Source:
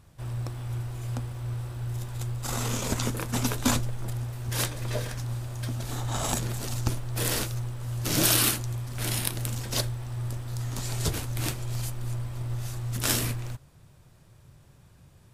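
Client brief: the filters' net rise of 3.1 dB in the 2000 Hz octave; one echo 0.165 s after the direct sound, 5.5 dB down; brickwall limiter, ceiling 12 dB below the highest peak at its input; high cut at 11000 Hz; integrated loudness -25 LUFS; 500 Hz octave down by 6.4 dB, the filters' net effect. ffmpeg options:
-af "lowpass=11k,equalizer=f=500:t=o:g=-9,equalizer=f=2k:t=o:g=4.5,alimiter=limit=-17.5dB:level=0:latency=1,aecho=1:1:165:0.531,volume=6dB"

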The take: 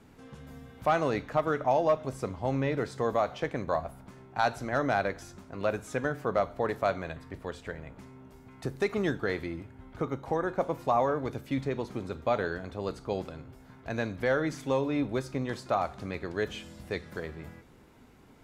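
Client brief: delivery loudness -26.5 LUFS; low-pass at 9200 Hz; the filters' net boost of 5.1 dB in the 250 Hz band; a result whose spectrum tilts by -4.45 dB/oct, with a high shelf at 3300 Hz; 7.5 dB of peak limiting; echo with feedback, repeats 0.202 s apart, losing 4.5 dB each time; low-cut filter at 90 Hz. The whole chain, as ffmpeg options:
-af "highpass=90,lowpass=9.2k,equalizer=f=250:t=o:g=6.5,highshelf=f=3.3k:g=-8,alimiter=limit=-21dB:level=0:latency=1,aecho=1:1:202|404|606|808|1010|1212|1414|1616|1818:0.596|0.357|0.214|0.129|0.0772|0.0463|0.0278|0.0167|0.01,volume=5dB"

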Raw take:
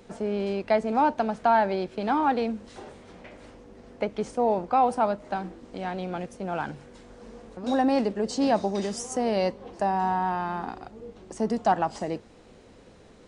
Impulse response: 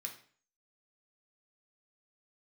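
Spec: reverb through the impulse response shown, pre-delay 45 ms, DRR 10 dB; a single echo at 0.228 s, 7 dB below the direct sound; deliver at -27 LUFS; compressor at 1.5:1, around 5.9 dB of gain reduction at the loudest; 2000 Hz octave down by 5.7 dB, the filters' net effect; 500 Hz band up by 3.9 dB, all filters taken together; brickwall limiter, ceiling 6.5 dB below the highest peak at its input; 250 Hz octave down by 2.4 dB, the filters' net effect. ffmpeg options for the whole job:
-filter_complex "[0:a]equalizer=f=250:t=o:g=-4.5,equalizer=f=500:t=o:g=6.5,equalizer=f=2k:t=o:g=-8.5,acompressor=threshold=-32dB:ratio=1.5,alimiter=limit=-21.5dB:level=0:latency=1,aecho=1:1:228:0.447,asplit=2[a][b];[1:a]atrim=start_sample=2205,adelay=45[c];[b][c]afir=irnorm=-1:irlink=0,volume=-7.5dB[d];[a][d]amix=inputs=2:normalize=0,volume=4.5dB"

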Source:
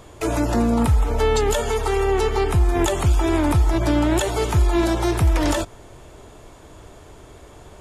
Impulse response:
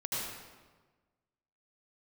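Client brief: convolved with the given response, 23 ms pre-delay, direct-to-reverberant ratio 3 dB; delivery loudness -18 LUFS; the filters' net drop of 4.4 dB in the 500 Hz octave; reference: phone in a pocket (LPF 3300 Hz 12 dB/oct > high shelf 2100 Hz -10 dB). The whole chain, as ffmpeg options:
-filter_complex "[0:a]equalizer=f=500:t=o:g=-5.5,asplit=2[a][b];[1:a]atrim=start_sample=2205,adelay=23[c];[b][c]afir=irnorm=-1:irlink=0,volume=-8dB[d];[a][d]amix=inputs=2:normalize=0,lowpass=3.3k,highshelf=f=2.1k:g=-10,volume=2.5dB"

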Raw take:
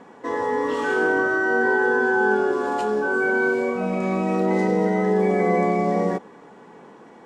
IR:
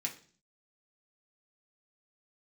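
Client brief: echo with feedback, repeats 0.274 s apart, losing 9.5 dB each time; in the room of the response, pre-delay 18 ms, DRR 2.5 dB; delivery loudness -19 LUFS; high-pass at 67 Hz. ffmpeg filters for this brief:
-filter_complex "[0:a]highpass=67,aecho=1:1:274|548|822|1096:0.335|0.111|0.0365|0.012,asplit=2[a][b];[1:a]atrim=start_sample=2205,adelay=18[c];[b][c]afir=irnorm=-1:irlink=0,volume=-3.5dB[d];[a][d]amix=inputs=2:normalize=0"

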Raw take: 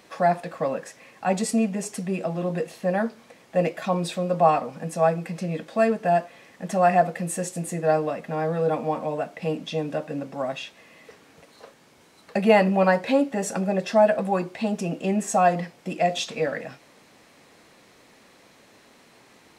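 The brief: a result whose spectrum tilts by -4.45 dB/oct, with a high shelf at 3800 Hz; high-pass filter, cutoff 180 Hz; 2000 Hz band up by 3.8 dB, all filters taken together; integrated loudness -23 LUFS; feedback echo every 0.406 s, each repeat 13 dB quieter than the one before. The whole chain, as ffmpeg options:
-af "highpass=180,equalizer=f=2k:t=o:g=4,highshelf=f=3.8k:g=3,aecho=1:1:406|812|1218:0.224|0.0493|0.0108,volume=1dB"

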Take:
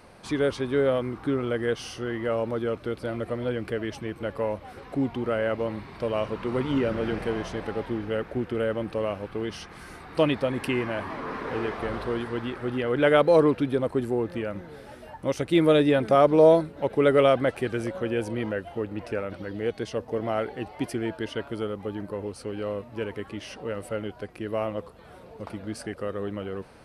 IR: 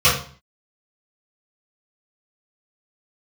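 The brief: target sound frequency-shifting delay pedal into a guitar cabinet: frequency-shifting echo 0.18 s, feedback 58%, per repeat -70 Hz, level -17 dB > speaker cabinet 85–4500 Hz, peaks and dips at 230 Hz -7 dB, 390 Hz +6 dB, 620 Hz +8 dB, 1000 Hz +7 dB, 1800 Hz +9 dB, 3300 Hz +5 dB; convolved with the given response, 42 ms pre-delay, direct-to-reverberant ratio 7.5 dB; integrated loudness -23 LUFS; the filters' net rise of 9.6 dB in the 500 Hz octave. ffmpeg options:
-filter_complex "[0:a]equalizer=f=500:t=o:g=5,asplit=2[a][b];[1:a]atrim=start_sample=2205,adelay=42[c];[b][c]afir=irnorm=-1:irlink=0,volume=-30dB[d];[a][d]amix=inputs=2:normalize=0,asplit=6[e][f][g][h][i][j];[f]adelay=180,afreqshift=-70,volume=-17dB[k];[g]adelay=360,afreqshift=-140,volume=-21.7dB[l];[h]adelay=540,afreqshift=-210,volume=-26.5dB[m];[i]adelay=720,afreqshift=-280,volume=-31.2dB[n];[j]adelay=900,afreqshift=-350,volume=-35.9dB[o];[e][k][l][m][n][o]amix=inputs=6:normalize=0,highpass=85,equalizer=f=230:t=q:w=4:g=-7,equalizer=f=390:t=q:w=4:g=6,equalizer=f=620:t=q:w=4:g=8,equalizer=f=1k:t=q:w=4:g=7,equalizer=f=1.8k:t=q:w=4:g=9,equalizer=f=3.3k:t=q:w=4:g=5,lowpass=f=4.5k:w=0.5412,lowpass=f=4.5k:w=1.3066,volume=-5dB"

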